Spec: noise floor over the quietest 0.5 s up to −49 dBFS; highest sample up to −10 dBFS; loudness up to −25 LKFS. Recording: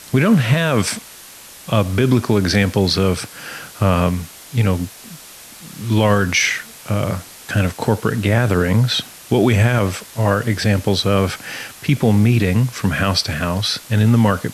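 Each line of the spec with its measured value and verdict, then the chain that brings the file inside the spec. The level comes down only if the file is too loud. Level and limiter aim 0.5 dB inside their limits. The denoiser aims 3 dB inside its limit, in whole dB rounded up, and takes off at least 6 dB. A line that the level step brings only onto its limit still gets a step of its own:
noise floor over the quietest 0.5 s −40 dBFS: out of spec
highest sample −4.5 dBFS: out of spec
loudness −17.5 LKFS: out of spec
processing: broadband denoise 6 dB, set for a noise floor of −40 dBFS
level −8 dB

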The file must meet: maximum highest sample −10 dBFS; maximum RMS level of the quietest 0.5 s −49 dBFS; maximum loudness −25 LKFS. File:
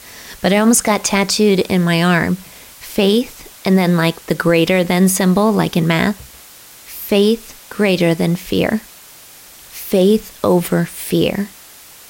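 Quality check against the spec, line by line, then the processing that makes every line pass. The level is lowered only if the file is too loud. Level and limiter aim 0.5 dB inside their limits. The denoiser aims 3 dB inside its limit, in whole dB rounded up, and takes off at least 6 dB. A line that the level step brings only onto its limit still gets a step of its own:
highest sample −3.0 dBFS: out of spec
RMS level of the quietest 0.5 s −40 dBFS: out of spec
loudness −15.5 LKFS: out of spec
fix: level −10 dB

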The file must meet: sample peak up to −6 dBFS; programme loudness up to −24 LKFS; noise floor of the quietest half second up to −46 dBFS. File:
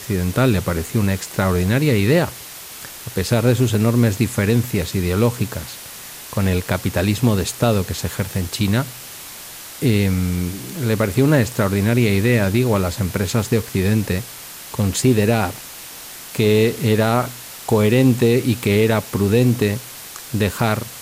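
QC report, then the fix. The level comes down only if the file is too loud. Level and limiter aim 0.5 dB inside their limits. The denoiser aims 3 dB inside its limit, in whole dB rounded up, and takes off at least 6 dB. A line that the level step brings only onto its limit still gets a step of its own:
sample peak −4.5 dBFS: out of spec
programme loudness −18.5 LKFS: out of spec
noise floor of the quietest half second −36 dBFS: out of spec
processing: broadband denoise 7 dB, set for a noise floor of −36 dBFS
level −6 dB

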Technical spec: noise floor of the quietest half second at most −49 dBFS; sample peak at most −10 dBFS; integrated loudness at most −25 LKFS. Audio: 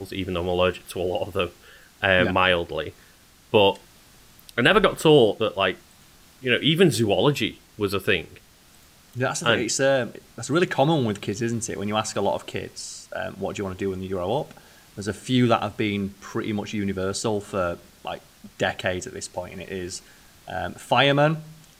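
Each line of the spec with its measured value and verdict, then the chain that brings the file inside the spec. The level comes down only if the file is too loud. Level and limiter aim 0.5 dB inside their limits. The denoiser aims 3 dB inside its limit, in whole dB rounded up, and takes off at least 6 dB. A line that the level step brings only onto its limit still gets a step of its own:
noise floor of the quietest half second −53 dBFS: in spec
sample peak −4.5 dBFS: out of spec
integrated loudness −23.5 LKFS: out of spec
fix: level −2 dB
brickwall limiter −10.5 dBFS

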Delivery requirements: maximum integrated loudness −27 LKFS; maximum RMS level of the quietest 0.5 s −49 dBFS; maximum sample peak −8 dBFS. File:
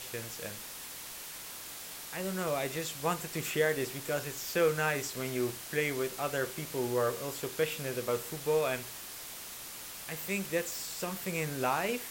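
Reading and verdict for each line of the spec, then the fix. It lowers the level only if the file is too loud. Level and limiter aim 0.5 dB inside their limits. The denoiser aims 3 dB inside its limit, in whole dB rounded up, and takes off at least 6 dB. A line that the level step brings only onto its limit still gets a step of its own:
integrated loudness −34.0 LKFS: in spec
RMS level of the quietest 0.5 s −45 dBFS: out of spec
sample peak −16.5 dBFS: in spec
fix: broadband denoise 7 dB, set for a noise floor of −45 dBFS

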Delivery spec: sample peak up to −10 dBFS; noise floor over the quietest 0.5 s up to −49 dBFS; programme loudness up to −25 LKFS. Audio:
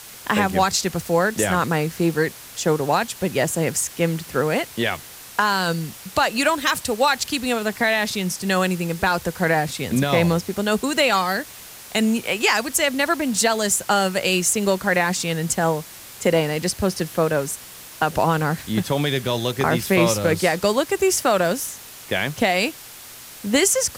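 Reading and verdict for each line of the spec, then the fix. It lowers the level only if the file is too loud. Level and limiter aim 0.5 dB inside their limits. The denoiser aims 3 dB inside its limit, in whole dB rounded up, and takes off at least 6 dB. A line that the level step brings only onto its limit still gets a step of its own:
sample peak −5.0 dBFS: out of spec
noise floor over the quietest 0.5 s −40 dBFS: out of spec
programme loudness −21.0 LKFS: out of spec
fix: broadband denoise 8 dB, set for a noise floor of −40 dBFS
level −4.5 dB
brickwall limiter −10.5 dBFS

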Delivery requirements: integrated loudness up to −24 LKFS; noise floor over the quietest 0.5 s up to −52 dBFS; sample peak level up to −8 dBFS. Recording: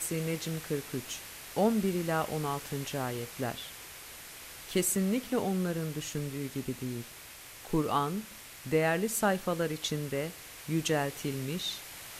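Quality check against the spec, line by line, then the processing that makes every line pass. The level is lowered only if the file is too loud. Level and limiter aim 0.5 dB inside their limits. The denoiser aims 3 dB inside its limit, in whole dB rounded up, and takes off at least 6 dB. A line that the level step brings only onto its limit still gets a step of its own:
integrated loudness −32.5 LKFS: in spec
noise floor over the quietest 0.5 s −49 dBFS: out of spec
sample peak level −15.5 dBFS: in spec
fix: broadband denoise 6 dB, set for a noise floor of −49 dBFS

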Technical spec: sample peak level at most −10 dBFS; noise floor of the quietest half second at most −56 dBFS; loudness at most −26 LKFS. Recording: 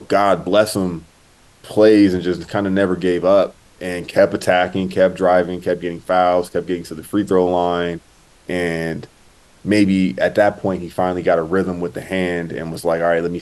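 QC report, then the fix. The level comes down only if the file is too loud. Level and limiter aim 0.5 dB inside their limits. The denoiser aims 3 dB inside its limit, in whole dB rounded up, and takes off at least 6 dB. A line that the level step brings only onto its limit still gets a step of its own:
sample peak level −1.5 dBFS: out of spec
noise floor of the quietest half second −50 dBFS: out of spec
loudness −18.0 LKFS: out of spec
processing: level −8.5 dB
brickwall limiter −10.5 dBFS

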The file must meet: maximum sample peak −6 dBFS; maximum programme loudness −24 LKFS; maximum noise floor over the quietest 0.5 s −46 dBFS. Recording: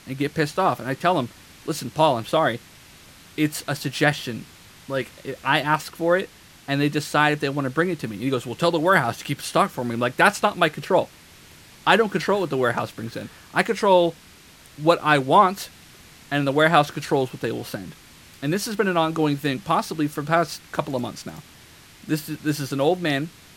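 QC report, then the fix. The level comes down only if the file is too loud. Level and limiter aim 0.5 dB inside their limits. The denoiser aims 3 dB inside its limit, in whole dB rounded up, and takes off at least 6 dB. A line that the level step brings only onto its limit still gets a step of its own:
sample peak −2.0 dBFS: out of spec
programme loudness −22.5 LKFS: out of spec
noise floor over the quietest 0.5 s −49 dBFS: in spec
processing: level −2 dB
brickwall limiter −6.5 dBFS

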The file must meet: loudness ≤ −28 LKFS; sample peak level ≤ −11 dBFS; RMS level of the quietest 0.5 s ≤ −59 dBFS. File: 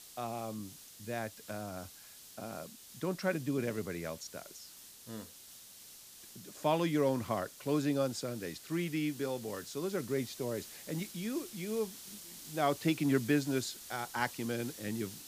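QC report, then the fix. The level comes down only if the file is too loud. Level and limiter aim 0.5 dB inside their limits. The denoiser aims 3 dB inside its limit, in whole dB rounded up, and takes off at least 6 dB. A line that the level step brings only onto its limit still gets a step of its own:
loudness −36.0 LKFS: in spec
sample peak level −15.0 dBFS: in spec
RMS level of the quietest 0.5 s −54 dBFS: out of spec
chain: broadband denoise 8 dB, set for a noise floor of −54 dBFS

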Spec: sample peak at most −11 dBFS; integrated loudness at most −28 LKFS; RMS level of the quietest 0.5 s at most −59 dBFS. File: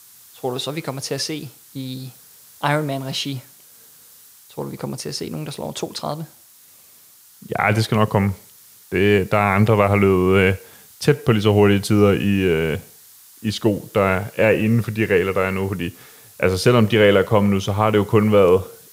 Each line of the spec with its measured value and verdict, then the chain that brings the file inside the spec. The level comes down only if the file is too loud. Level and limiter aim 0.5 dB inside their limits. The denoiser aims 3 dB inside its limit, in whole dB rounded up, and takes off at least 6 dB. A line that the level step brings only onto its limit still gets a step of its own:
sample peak −2.5 dBFS: out of spec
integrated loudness −19.0 LKFS: out of spec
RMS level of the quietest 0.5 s −49 dBFS: out of spec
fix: broadband denoise 6 dB, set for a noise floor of −49 dBFS
level −9.5 dB

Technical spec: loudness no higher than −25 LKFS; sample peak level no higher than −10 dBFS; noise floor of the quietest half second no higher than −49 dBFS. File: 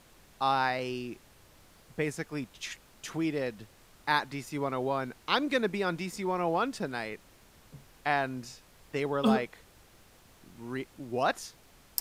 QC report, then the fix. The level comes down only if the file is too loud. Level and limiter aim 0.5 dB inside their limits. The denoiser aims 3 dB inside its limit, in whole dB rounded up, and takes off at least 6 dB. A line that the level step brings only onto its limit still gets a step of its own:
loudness −32.0 LKFS: in spec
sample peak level −8.5 dBFS: out of spec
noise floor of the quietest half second −58 dBFS: in spec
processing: brickwall limiter −10.5 dBFS

